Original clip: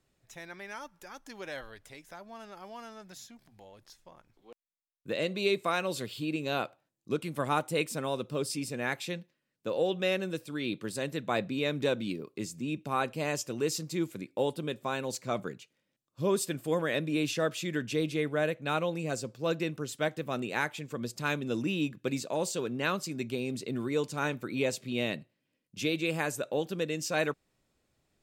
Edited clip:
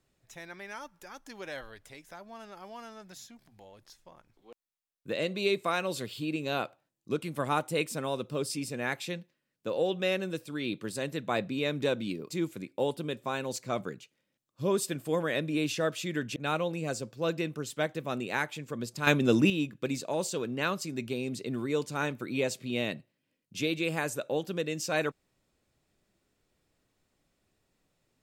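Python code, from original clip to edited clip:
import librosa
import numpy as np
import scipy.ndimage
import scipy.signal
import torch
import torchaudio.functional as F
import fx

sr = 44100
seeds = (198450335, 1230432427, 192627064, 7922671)

y = fx.edit(x, sr, fx.cut(start_s=12.3, length_s=1.59),
    fx.cut(start_s=17.95, length_s=0.63),
    fx.clip_gain(start_s=21.29, length_s=0.43, db=8.5), tone=tone)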